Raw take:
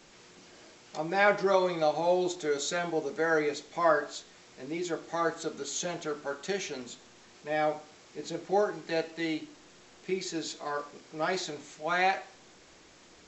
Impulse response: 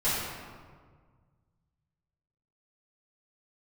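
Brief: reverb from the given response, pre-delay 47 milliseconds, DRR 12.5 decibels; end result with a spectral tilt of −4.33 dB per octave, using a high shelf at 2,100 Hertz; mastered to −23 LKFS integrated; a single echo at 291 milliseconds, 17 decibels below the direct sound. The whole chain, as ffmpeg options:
-filter_complex "[0:a]highshelf=frequency=2100:gain=-5,aecho=1:1:291:0.141,asplit=2[link_01][link_02];[1:a]atrim=start_sample=2205,adelay=47[link_03];[link_02][link_03]afir=irnorm=-1:irlink=0,volume=-24dB[link_04];[link_01][link_04]amix=inputs=2:normalize=0,volume=8.5dB"

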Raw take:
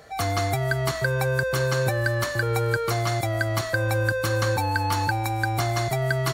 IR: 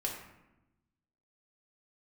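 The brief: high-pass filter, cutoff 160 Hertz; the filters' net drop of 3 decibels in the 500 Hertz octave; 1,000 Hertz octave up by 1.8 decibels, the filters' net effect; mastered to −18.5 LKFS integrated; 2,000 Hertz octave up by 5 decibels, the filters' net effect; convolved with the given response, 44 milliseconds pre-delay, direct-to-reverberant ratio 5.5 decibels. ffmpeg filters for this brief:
-filter_complex "[0:a]highpass=160,equalizer=frequency=500:width_type=o:gain=-5,equalizer=frequency=1000:width_type=o:gain=3,equalizer=frequency=2000:width_type=o:gain=6,asplit=2[link_01][link_02];[1:a]atrim=start_sample=2205,adelay=44[link_03];[link_02][link_03]afir=irnorm=-1:irlink=0,volume=-8dB[link_04];[link_01][link_04]amix=inputs=2:normalize=0,volume=4dB"

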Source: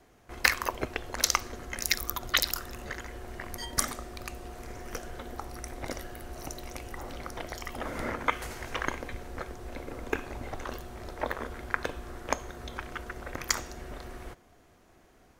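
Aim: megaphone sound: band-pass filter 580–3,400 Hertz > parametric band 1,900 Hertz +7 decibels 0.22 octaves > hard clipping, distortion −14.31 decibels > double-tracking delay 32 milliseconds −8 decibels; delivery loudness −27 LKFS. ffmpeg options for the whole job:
ffmpeg -i in.wav -filter_complex "[0:a]highpass=580,lowpass=3400,equalizer=frequency=1900:width_type=o:width=0.22:gain=7,asoftclip=type=hard:threshold=-12dB,asplit=2[link_01][link_02];[link_02]adelay=32,volume=-8dB[link_03];[link_01][link_03]amix=inputs=2:normalize=0,volume=8dB" out.wav

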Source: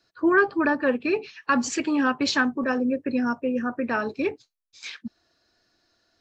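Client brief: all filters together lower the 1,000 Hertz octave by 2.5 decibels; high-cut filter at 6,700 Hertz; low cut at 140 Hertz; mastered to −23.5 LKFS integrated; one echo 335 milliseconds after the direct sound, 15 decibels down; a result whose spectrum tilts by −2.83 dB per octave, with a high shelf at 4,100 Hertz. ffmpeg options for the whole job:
ffmpeg -i in.wav -af "highpass=140,lowpass=6700,equalizer=frequency=1000:width_type=o:gain=-3.5,highshelf=frequency=4100:gain=5,aecho=1:1:335:0.178,volume=1dB" out.wav

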